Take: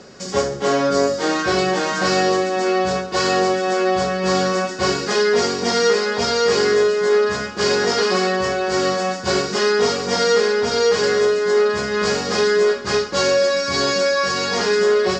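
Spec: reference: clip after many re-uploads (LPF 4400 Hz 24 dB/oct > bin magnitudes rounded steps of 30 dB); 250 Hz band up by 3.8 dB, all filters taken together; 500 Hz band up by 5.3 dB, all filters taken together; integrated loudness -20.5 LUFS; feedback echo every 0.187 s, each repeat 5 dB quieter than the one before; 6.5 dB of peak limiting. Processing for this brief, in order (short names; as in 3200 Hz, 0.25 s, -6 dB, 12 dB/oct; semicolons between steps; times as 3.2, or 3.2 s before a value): bell 250 Hz +3 dB; bell 500 Hz +5.5 dB; limiter -8.5 dBFS; LPF 4400 Hz 24 dB/oct; feedback echo 0.187 s, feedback 56%, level -5 dB; bin magnitudes rounded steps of 30 dB; gain -4.5 dB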